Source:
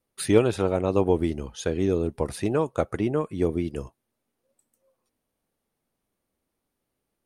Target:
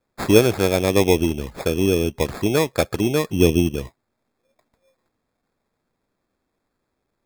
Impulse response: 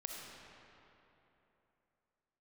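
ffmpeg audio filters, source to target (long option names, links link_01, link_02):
-filter_complex "[0:a]asettb=1/sr,asplit=3[link_01][link_02][link_03];[link_01]atrim=end=3.294[link_04];[link_02]atrim=start=3.29:end=3.76,asetpts=PTS-STARTPTS,afade=type=in:duration=0.004:curve=qsin,afade=type=out:start_time=0.466:duration=0.004:curve=qsin,lowshelf=frequency=400:gain=6[link_05];[link_03]atrim=start=3.756[link_06];[link_04][link_05]acrossfade=duration=0.004:curve1=hsin:curve2=qsin[link_07];[link_07][link_06]acrossfade=duration=0.004:curve1=qsin:curve2=hsin,acrusher=samples=15:mix=1:aa=0.000001,volume=5dB"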